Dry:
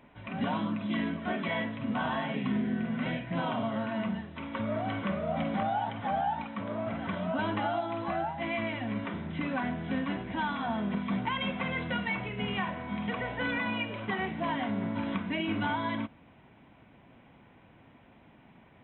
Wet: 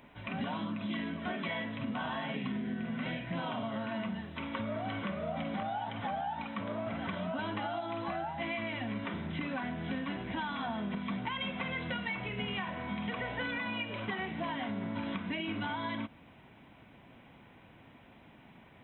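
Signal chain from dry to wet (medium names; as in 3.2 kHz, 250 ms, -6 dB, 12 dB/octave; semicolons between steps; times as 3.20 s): treble shelf 3.4 kHz +8.5 dB; compression, threshold -33 dBFS, peak gain reduction 7.5 dB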